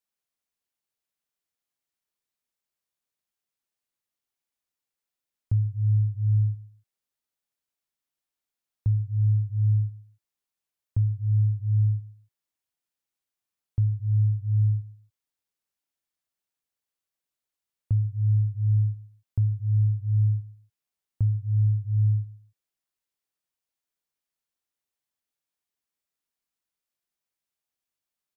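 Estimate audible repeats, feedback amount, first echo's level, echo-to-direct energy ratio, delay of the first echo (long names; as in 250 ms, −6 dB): 2, 29%, −20.5 dB, −20.0 dB, 142 ms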